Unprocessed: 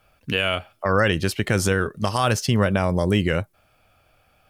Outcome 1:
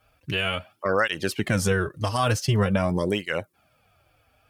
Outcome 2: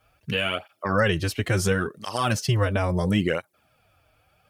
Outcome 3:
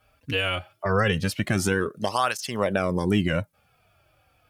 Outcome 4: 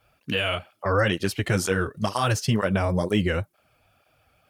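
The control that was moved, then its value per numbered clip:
tape flanging out of phase, nulls at: 0.46, 0.73, 0.21, 2.1 Hz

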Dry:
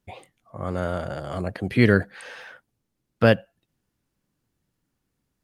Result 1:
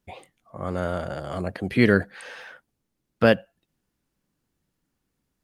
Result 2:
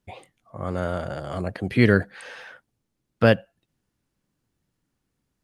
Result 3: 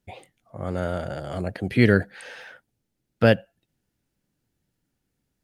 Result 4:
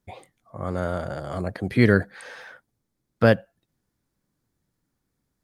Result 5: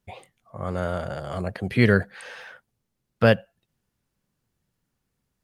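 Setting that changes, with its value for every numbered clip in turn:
bell, frequency: 110, 15000, 1100, 2800, 300 Hz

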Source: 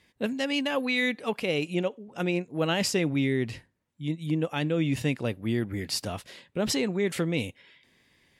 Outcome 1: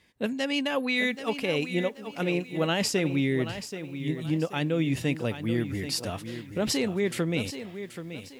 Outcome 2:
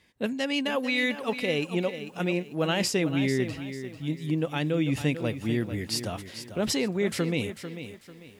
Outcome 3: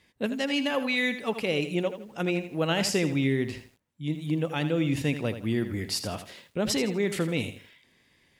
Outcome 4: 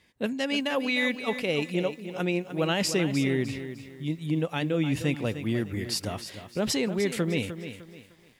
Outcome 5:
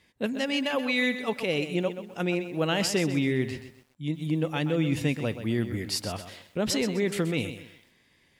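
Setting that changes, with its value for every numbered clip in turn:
lo-fi delay, time: 780, 444, 81, 303, 128 ms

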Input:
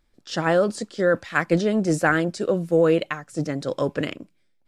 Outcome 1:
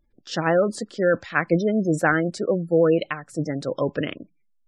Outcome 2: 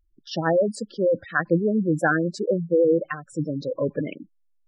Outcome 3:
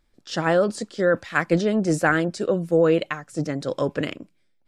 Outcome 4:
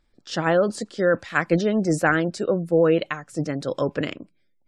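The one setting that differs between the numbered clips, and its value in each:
spectral gate, under each frame's peak: -25, -10, -55, -40 dB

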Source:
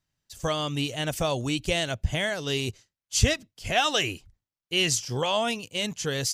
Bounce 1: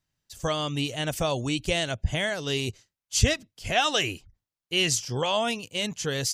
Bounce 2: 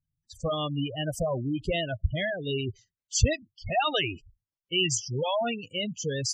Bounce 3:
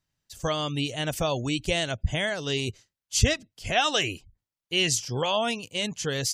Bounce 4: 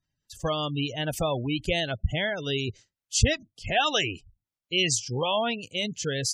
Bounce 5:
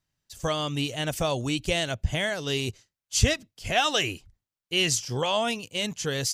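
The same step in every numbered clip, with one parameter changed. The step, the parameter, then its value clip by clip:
spectral gate, under each frame's peak: -45, -10, -35, -20, -60 dB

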